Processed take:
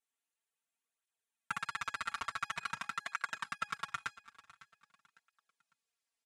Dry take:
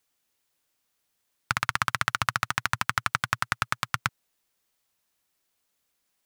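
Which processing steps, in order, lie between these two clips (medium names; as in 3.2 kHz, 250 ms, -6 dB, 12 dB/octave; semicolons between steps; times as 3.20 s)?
waveshaping leveller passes 3; peaking EQ 4.9 kHz -11 dB 0.43 oct, from 1.61 s 16 kHz; level held to a coarse grid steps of 15 dB; low-pass 11 kHz 24 dB/octave; bass shelf 290 Hz -11.5 dB; comb 4.4 ms, depth 96%; peak limiter -21.5 dBFS, peak gain reduction 9 dB; feedback comb 830 Hz, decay 0.36 s, mix 70%; feedback delay 554 ms, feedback 33%, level -18 dB; cancelling through-zero flanger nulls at 0.47 Hz, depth 6.5 ms; trim +11 dB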